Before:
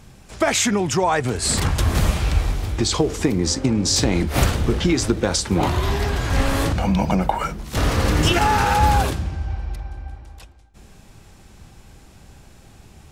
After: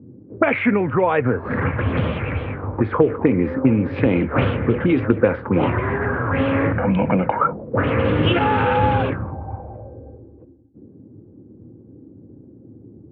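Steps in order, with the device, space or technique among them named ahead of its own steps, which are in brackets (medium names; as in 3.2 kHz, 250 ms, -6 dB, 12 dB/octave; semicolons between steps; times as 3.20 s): envelope filter bass rig (touch-sensitive low-pass 290–3300 Hz up, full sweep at -14 dBFS; cabinet simulation 89–2200 Hz, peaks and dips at 110 Hz +6 dB, 260 Hz +7 dB, 500 Hz +10 dB, 740 Hz -4 dB, 1.9 kHz -4 dB); trim -1 dB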